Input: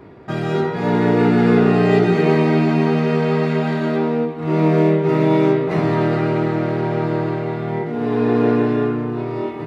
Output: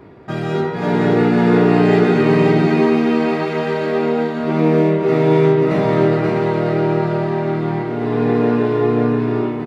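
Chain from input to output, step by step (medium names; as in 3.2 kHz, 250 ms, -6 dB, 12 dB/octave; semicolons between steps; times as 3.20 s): delay 531 ms -3 dB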